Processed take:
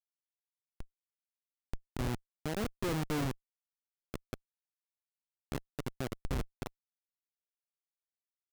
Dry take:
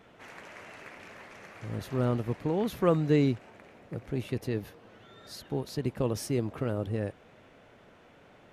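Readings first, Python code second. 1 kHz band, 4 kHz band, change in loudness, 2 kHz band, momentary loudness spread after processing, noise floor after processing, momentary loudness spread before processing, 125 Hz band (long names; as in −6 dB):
−5.5 dB, −3.5 dB, −8.5 dB, −3.5 dB, 17 LU, below −85 dBFS, 21 LU, −9.5 dB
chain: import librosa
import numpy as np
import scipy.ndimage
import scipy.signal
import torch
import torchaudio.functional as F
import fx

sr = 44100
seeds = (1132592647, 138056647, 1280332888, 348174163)

y = fx.dmg_wind(x, sr, seeds[0], corner_hz=83.0, level_db=-42.0)
y = fx.schmitt(y, sr, flips_db=-25.0)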